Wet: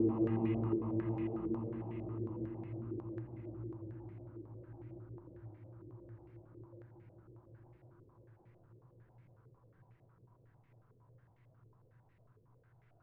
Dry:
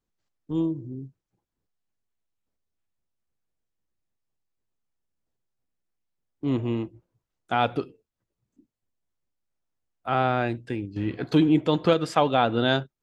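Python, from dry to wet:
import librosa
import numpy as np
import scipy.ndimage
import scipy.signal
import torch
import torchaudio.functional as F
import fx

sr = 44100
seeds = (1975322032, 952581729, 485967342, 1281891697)

y = fx.paulstretch(x, sr, seeds[0], factor=44.0, window_s=0.5, from_s=6.98)
y = fx.filter_held_lowpass(y, sr, hz=11.0, low_hz=420.0, high_hz=2100.0)
y = y * librosa.db_to_amplitude(9.5)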